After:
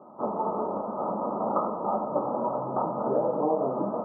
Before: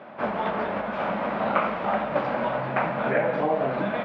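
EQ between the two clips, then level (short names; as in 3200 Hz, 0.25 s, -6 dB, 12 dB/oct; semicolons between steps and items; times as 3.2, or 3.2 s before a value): HPF 88 Hz; dynamic EQ 500 Hz, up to +5 dB, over -38 dBFS, Q 0.82; rippled Chebyshev low-pass 1300 Hz, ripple 6 dB; -1.5 dB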